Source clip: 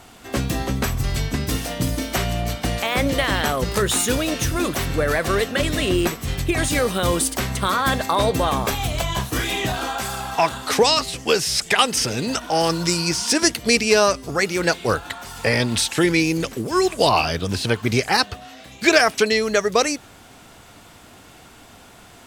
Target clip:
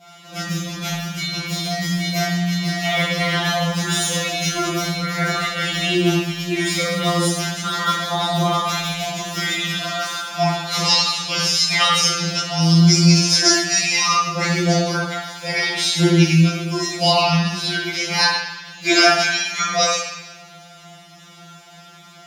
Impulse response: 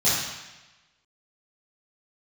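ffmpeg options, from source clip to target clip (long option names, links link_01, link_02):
-filter_complex "[0:a]equalizer=frequency=2900:width=0.68:gain=6,bandreject=frequency=67.32:width_type=h:width=4,bandreject=frequency=134.64:width_type=h:width=4,bandreject=frequency=201.96:width_type=h:width=4,bandreject=frequency=269.28:width_type=h:width=4,bandreject=frequency=336.6:width_type=h:width=4,bandreject=frequency=403.92:width_type=h:width=4[link_01];[1:a]atrim=start_sample=2205[link_02];[link_01][link_02]afir=irnorm=-1:irlink=0,afftfilt=real='re*2.83*eq(mod(b,8),0)':imag='im*2.83*eq(mod(b,8),0)':win_size=2048:overlap=0.75,volume=-15dB"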